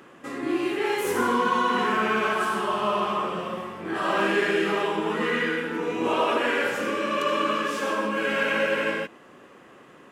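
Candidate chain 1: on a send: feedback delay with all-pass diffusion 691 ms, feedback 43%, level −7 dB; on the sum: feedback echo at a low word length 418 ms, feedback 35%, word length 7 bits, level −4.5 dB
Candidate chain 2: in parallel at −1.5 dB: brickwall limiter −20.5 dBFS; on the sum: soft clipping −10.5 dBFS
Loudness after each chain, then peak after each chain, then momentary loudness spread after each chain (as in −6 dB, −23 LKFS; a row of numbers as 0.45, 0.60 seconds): −23.0, −22.0 LKFS; −9.0, −12.0 dBFS; 6, 5 LU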